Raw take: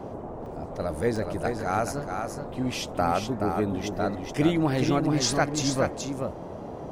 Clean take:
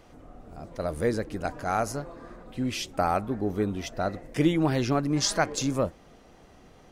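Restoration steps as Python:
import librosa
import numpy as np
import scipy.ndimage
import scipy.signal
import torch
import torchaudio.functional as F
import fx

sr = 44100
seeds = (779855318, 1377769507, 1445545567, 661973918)

y = fx.fix_interpolate(x, sr, at_s=(0.46, 1.16, 4.87, 5.33), length_ms=1.8)
y = fx.noise_reduce(y, sr, print_start_s=6.31, print_end_s=6.81, reduce_db=16.0)
y = fx.fix_echo_inverse(y, sr, delay_ms=425, level_db=-5.5)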